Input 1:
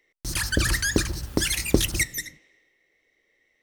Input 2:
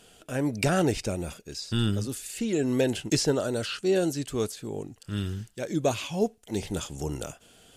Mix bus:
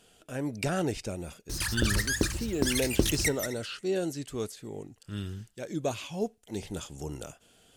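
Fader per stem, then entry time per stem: −5.0, −5.5 decibels; 1.25, 0.00 seconds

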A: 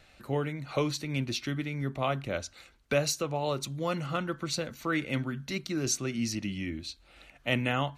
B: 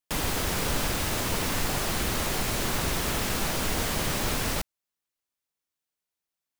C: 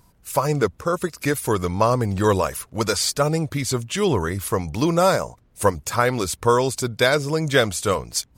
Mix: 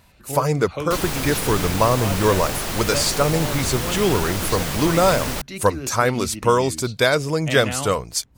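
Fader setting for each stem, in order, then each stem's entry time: 0.0, +2.0, +0.5 decibels; 0.00, 0.80, 0.00 seconds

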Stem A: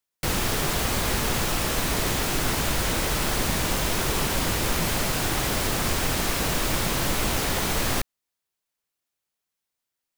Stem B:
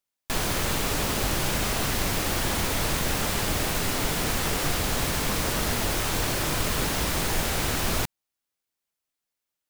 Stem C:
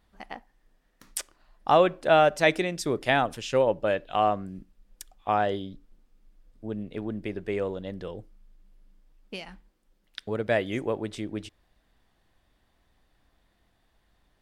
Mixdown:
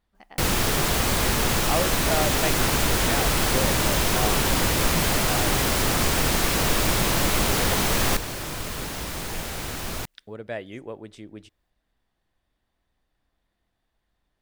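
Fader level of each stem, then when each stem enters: +2.5, −5.5, −8.0 decibels; 0.15, 2.00, 0.00 seconds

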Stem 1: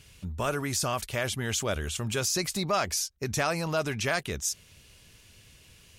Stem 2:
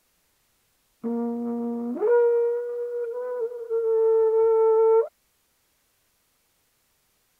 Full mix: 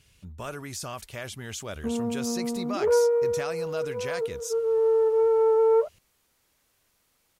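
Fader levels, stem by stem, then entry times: −7.0, −1.5 decibels; 0.00, 0.80 seconds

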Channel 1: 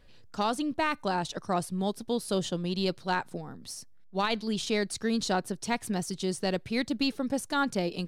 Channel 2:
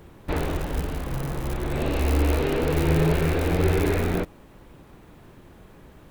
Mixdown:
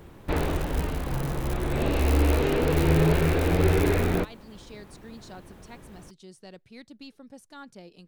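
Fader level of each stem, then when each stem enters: −17.0, 0.0 decibels; 0.00, 0.00 seconds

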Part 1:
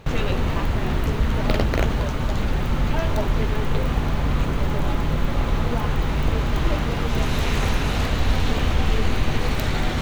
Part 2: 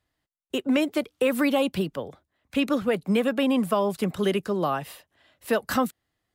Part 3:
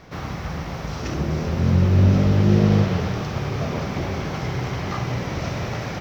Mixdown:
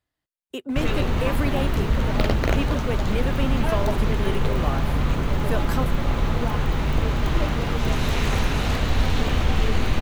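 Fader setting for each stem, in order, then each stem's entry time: −0.5 dB, −5.0 dB, muted; 0.70 s, 0.00 s, muted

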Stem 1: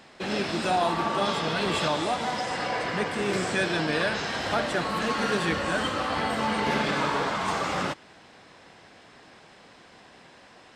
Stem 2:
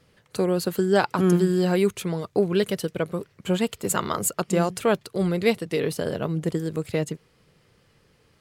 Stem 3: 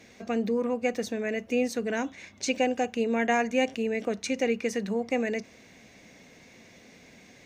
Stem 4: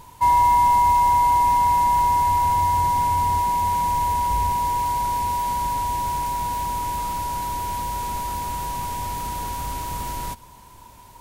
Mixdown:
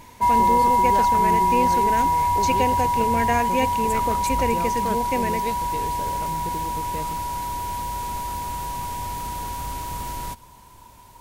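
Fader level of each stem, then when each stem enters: muted, −10.0 dB, +1.0 dB, −1.5 dB; muted, 0.00 s, 0.00 s, 0.00 s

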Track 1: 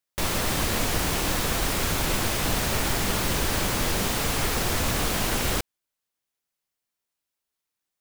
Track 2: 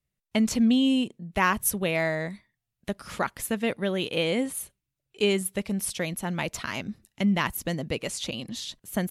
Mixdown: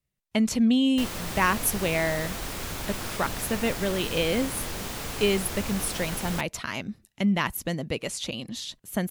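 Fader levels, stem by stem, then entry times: −8.5, 0.0 decibels; 0.80, 0.00 seconds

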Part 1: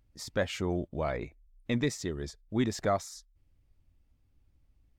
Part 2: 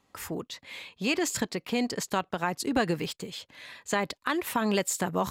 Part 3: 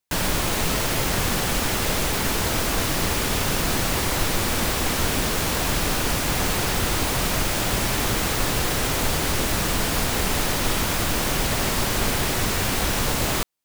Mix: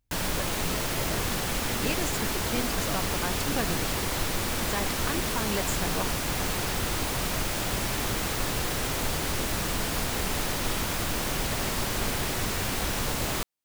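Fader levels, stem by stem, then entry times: −9.0, −5.5, −6.0 decibels; 0.00, 0.80, 0.00 seconds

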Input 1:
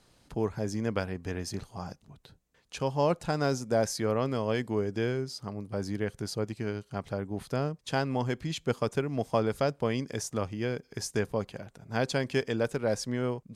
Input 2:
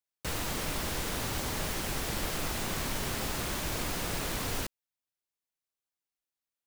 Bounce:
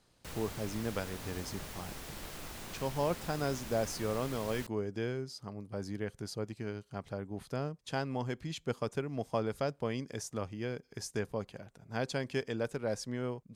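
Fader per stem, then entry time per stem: −6.0, −11.5 decibels; 0.00, 0.00 seconds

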